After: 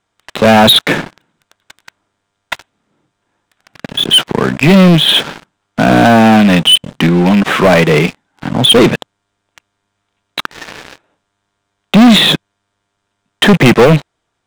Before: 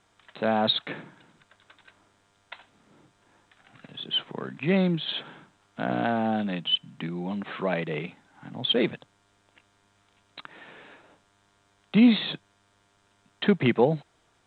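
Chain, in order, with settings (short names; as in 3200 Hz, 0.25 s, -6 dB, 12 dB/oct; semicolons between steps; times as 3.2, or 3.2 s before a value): rattling part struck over -30 dBFS, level -31 dBFS; sample leveller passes 5; gain +6 dB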